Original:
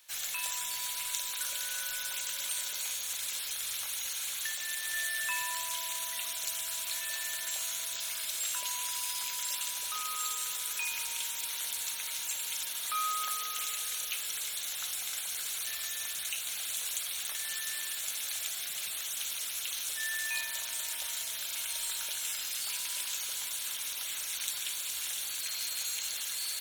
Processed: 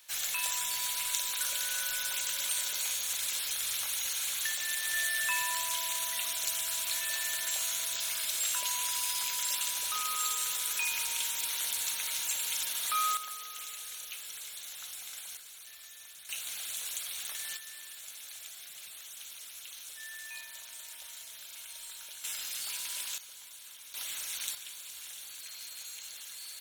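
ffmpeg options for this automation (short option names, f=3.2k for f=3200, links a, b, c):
-af "asetnsamples=n=441:p=0,asendcmd='13.17 volume volume -7dB;15.37 volume volume -13.5dB;16.29 volume volume -2.5dB;17.57 volume volume -10dB;22.24 volume volume -2dB;23.18 volume volume -13dB;23.94 volume volume -1.5dB;24.55 volume volume -9dB',volume=2.5dB"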